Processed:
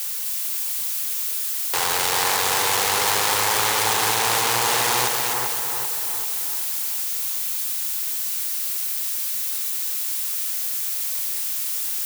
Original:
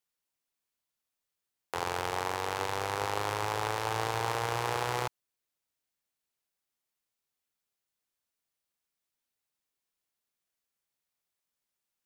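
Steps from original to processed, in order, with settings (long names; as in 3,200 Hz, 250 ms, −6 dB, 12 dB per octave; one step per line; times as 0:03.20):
power curve on the samples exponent 0.35
spectral tilt +4 dB per octave
echo with a time of its own for lows and highs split 2,200 Hz, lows 389 ms, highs 258 ms, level −4 dB
level −1 dB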